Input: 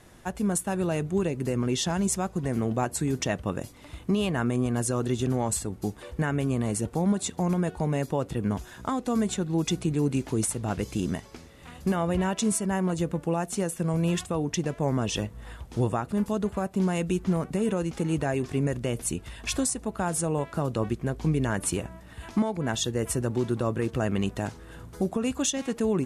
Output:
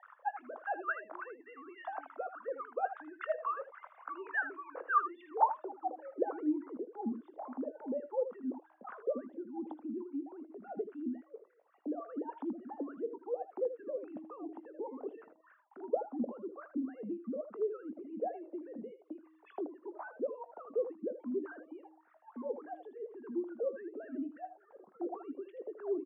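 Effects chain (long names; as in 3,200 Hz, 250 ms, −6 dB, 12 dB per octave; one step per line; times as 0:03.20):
three sine waves on the formant tracks
0:15.76–0:16.41: flat-topped bell 560 Hz +9.5 dB 1.1 octaves
downward compressor 2 to 1, threshold −35 dBFS, peak gain reduction 10 dB
band-pass filter sweep 1,300 Hz → 230 Hz, 0:05.19–0:06.74
hum removal 317.5 Hz, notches 2
LFO wah 3.5 Hz 490–1,500 Hz, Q 6.2
on a send: ambience of single reflections 20 ms −16 dB, 79 ms −11.5 dB
on the sum: level +17.5 dB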